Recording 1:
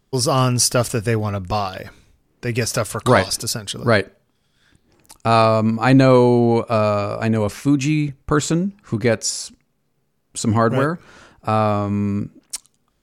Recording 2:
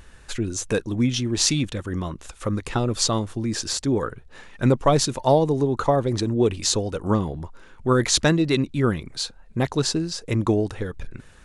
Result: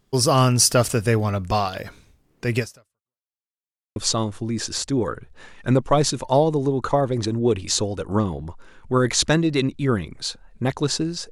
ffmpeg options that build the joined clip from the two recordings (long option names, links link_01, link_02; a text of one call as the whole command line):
ffmpeg -i cue0.wav -i cue1.wav -filter_complex "[0:a]apad=whole_dur=11.31,atrim=end=11.31,asplit=2[link_01][link_02];[link_01]atrim=end=3.22,asetpts=PTS-STARTPTS,afade=type=out:start_time=2.58:duration=0.64:curve=exp[link_03];[link_02]atrim=start=3.22:end=3.96,asetpts=PTS-STARTPTS,volume=0[link_04];[1:a]atrim=start=2.91:end=10.26,asetpts=PTS-STARTPTS,afade=type=in:duration=0.004:curve=hsin[link_05];[link_03][link_04][link_05]concat=n=3:v=0:a=1" out.wav